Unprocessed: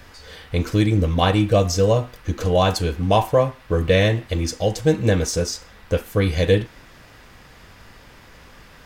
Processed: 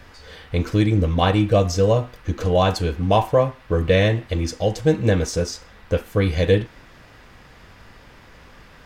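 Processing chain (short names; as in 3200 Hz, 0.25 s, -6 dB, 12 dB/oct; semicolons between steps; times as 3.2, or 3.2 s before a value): high shelf 5700 Hz -7.5 dB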